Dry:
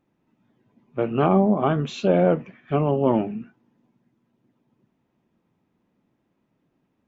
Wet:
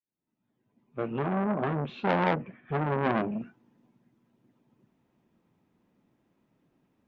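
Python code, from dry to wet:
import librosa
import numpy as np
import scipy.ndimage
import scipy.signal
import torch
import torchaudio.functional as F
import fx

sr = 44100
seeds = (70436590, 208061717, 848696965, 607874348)

y = fx.fade_in_head(x, sr, length_s=2.17)
y = fx.air_absorb(y, sr, metres=440.0, at=(1.19, 3.32))
y = fx.transformer_sat(y, sr, knee_hz=1500.0)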